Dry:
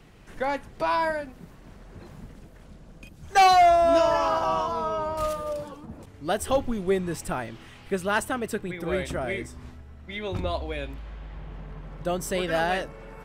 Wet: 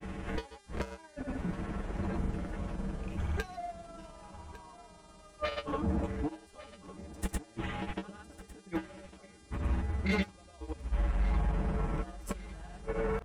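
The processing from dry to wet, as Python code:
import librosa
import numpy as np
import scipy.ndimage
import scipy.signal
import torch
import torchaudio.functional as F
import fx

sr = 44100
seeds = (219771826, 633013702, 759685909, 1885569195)

p1 = fx.wiener(x, sr, points=9)
p2 = fx.gate_flip(p1, sr, shuts_db=-23.0, range_db=-40)
p3 = fx.fold_sine(p2, sr, drive_db=14, ceiling_db=-21.0)
p4 = p2 + (p3 * 10.0 ** (-7.5 / 20.0))
p5 = fx.comb_fb(p4, sr, f0_hz=64.0, decay_s=0.17, harmonics='odd', damping=0.0, mix_pct=90)
p6 = fx.dmg_buzz(p5, sr, base_hz=400.0, harmonics=27, level_db=-69.0, tilt_db=-2, odd_only=False)
p7 = fx.granulator(p6, sr, seeds[0], grain_ms=100.0, per_s=20.0, spray_ms=100.0, spread_st=0)
p8 = p7 + fx.echo_feedback(p7, sr, ms=1153, feedback_pct=45, wet_db=-17.0, dry=0)
y = p8 * 10.0 ** (7.5 / 20.0)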